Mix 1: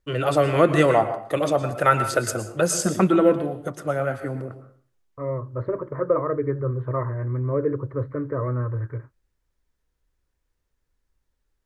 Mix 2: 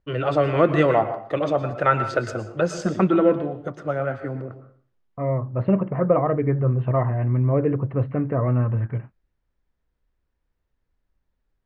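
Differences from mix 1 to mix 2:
first voice: add air absorption 180 m; second voice: remove fixed phaser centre 740 Hz, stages 6

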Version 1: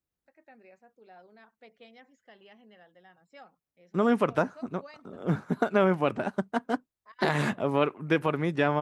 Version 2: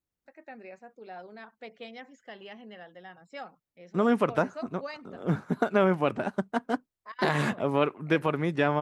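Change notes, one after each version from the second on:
first voice +9.5 dB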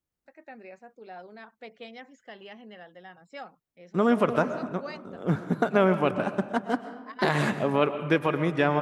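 reverb: on, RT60 1.2 s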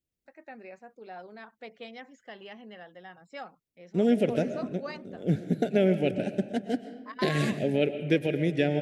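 second voice: add Butterworth band-stop 1100 Hz, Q 0.77

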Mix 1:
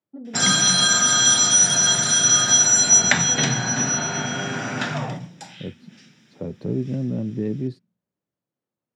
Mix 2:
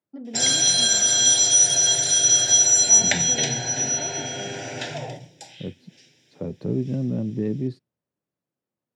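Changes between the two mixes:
first voice: remove running mean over 17 samples; background: add fixed phaser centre 490 Hz, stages 4

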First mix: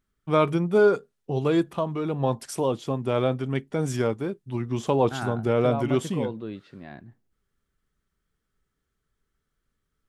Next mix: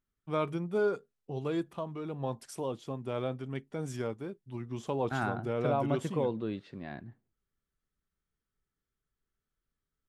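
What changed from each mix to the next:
first voice -10.5 dB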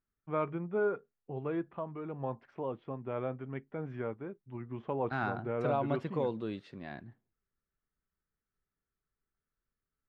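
first voice: add LPF 2200 Hz 24 dB/oct; master: add low shelf 490 Hz -3.5 dB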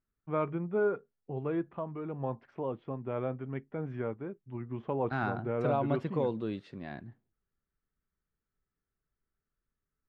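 master: add low shelf 490 Hz +3.5 dB

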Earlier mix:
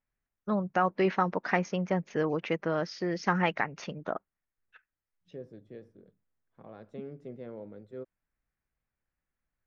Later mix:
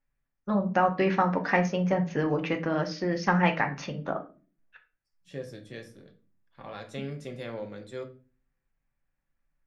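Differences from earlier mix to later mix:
second voice: remove band-pass 260 Hz, Q 0.63; reverb: on, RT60 0.35 s

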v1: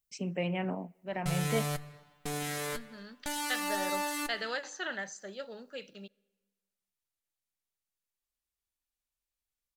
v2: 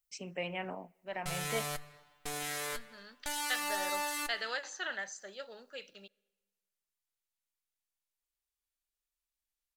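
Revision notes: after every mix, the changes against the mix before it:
master: add bell 180 Hz -11.5 dB 2.4 oct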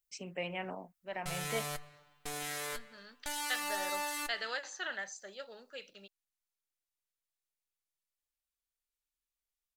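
reverb: off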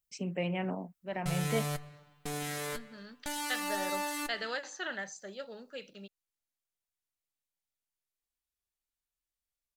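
master: add bell 180 Hz +11.5 dB 2.4 oct

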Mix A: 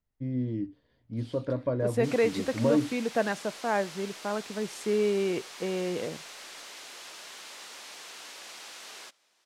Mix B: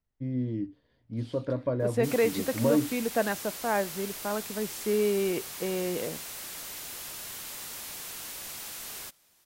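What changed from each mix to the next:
background: remove BPF 370–5700 Hz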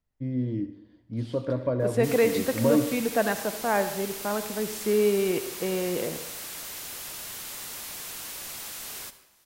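reverb: on, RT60 0.80 s

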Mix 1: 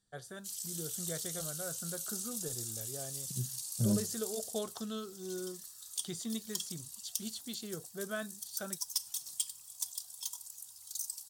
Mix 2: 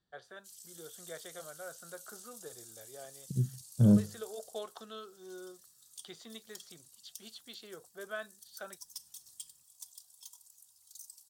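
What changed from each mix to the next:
first voice: add three-band isolator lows -18 dB, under 400 Hz, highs -22 dB, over 4300 Hz; second voice +7.5 dB; background -11.5 dB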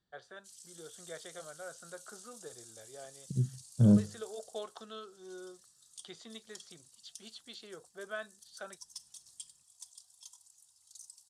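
master: add LPF 9900 Hz 24 dB/oct

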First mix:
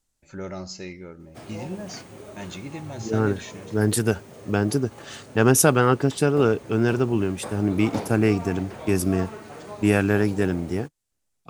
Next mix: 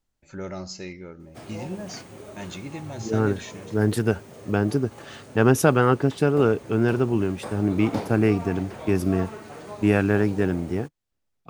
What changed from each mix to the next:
second voice: add bell 8900 Hz -12 dB 1.7 oct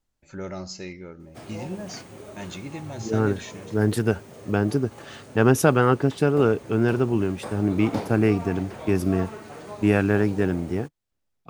none

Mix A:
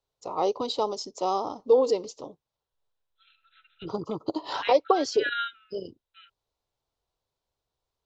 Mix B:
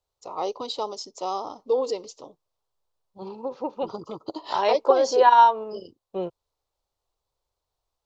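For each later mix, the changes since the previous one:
second voice: remove brick-wall FIR band-pass 1300–4100 Hz; master: add low shelf 490 Hz -7 dB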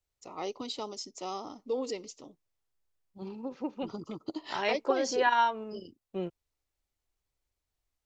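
master: add graphic EQ 125/250/500/1000/2000/4000 Hz -3/+4/-9/-11/+7/-7 dB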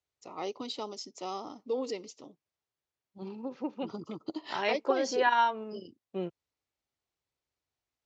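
master: add BPF 110–6300 Hz

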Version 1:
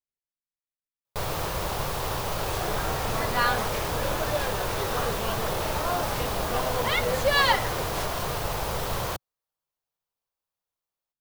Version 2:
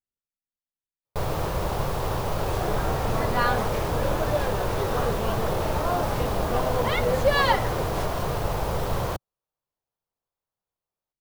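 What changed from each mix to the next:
master: add tilt shelf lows +5 dB, about 1200 Hz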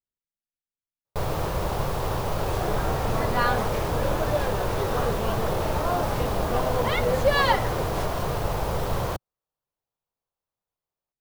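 none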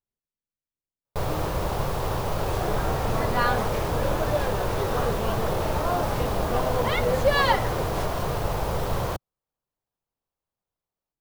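speech +6.0 dB

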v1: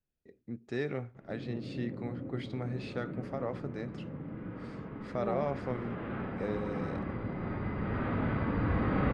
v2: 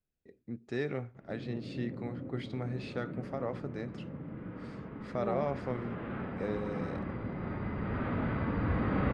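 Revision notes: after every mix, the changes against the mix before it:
background: send -6.0 dB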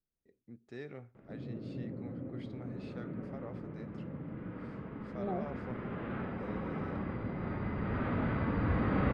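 first voice -11.0 dB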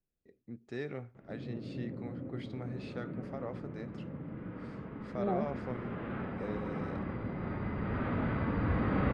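first voice +6.0 dB; second voice +4.0 dB

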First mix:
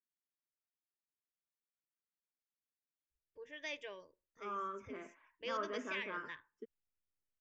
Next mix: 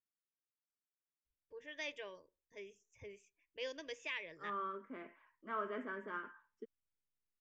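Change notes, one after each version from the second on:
first voice: entry -1.85 s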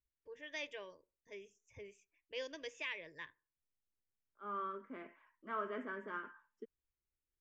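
first voice: entry -1.25 s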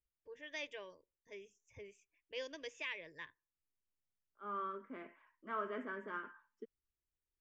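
first voice: send -6.5 dB

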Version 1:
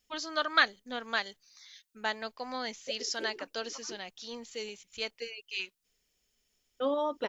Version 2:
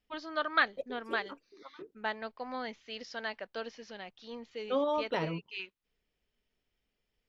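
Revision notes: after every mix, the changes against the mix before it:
first voice: add air absorption 300 m; second voice: entry -2.10 s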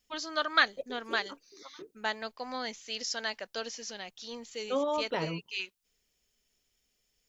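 first voice: remove air absorption 300 m

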